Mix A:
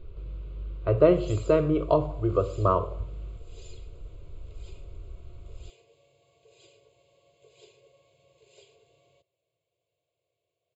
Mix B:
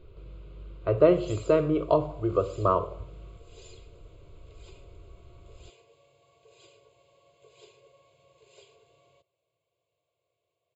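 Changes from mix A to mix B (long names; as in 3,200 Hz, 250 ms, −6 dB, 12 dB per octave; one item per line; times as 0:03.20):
speech: add low-shelf EQ 84 Hz −11 dB
background: add parametric band 1,200 Hz +9 dB 0.85 octaves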